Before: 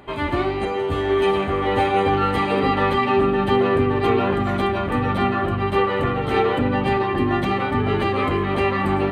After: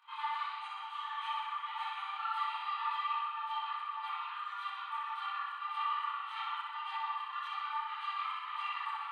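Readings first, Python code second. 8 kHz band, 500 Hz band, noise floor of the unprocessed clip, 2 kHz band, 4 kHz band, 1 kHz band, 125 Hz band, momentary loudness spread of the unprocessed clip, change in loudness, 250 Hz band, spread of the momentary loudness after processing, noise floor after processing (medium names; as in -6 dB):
no reading, under -40 dB, -25 dBFS, -17.0 dB, -12.0 dB, -13.0 dB, under -40 dB, 4 LU, -17.5 dB, under -40 dB, 4 LU, -44 dBFS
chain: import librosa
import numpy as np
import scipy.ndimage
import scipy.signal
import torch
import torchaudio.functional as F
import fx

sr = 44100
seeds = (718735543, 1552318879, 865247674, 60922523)

y = fx.tilt_shelf(x, sr, db=5.0, hz=1300.0)
y = fx.rider(y, sr, range_db=10, speed_s=2.0)
y = fx.chorus_voices(y, sr, voices=4, hz=0.9, base_ms=26, depth_ms=4.7, mix_pct=60)
y = scipy.signal.sosfilt(scipy.signal.cheby1(6, 9, 870.0, 'highpass', fs=sr, output='sos'), y)
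y = fx.room_flutter(y, sr, wall_m=10.7, rt60_s=0.92)
y = y * librosa.db_to_amplitude(-7.5)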